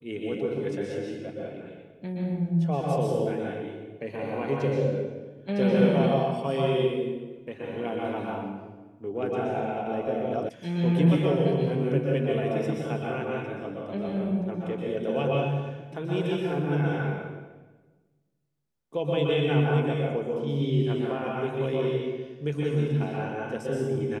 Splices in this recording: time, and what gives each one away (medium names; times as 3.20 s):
10.49 s: sound stops dead